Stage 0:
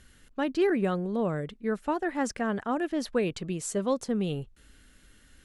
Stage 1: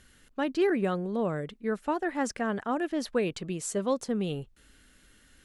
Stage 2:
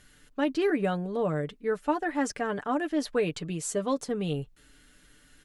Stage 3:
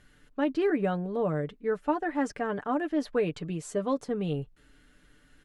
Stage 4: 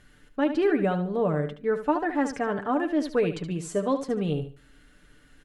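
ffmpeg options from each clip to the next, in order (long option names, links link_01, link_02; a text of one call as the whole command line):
ffmpeg -i in.wav -af "lowshelf=frequency=140:gain=-5" out.wav
ffmpeg -i in.wav -af "aecho=1:1:6.8:0.55" out.wav
ffmpeg -i in.wav -af "highshelf=frequency=3500:gain=-11.5" out.wav
ffmpeg -i in.wav -af "aecho=1:1:73|146|219:0.316|0.0759|0.0182,volume=3dB" out.wav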